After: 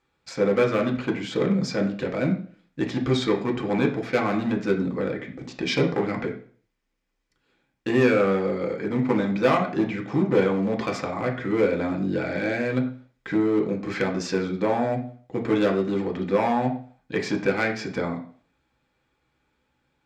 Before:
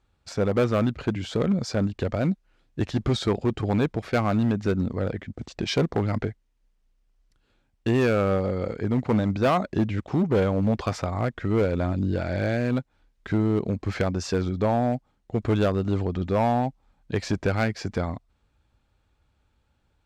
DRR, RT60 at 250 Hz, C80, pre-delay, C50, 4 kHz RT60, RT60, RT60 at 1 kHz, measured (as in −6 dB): 0.5 dB, 0.45 s, 13.5 dB, 3 ms, 10.0 dB, 0.45 s, 0.45 s, 0.45 s